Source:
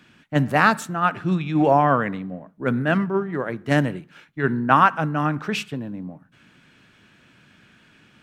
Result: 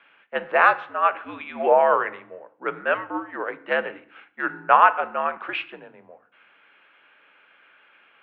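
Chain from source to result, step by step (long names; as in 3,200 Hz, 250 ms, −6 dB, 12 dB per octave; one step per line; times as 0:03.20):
single-sideband voice off tune −75 Hz 520–3,100 Hz
feedback delay network reverb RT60 0.58 s, low-frequency decay 1.55×, high-frequency decay 0.85×, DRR 13 dB
level +1 dB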